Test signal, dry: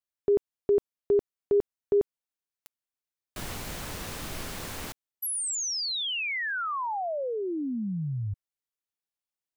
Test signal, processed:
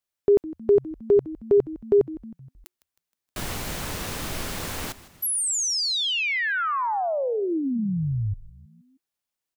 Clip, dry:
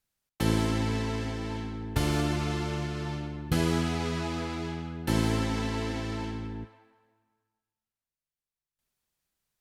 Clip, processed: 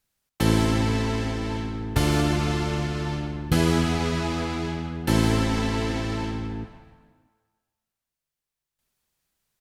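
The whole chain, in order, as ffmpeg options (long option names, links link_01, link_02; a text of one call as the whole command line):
ffmpeg -i in.wav -filter_complex "[0:a]asplit=2[link_01][link_02];[link_02]asplit=4[link_03][link_04][link_05][link_06];[link_03]adelay=157,afreqshift=-91,volume=-17.5dB[link_07];[link_04]adelay=314,afreqshift=-182,volume=-23.2dB[link_08];[link_05]adelay=471,afreqshift=-273,volume=-28.9dB[link_09];[link_06]adelay=628,afreqshift=-364,volume=-34.5dB[link_10];[link_07][link_08][link_09][link_10]amix=inputs=4:normalize=0[link_11];[link_01][link_11]amix=inputs=2:normalize=0,asoftclip=type=hard:threshold=-16dB,volume=5.5dB" out.wav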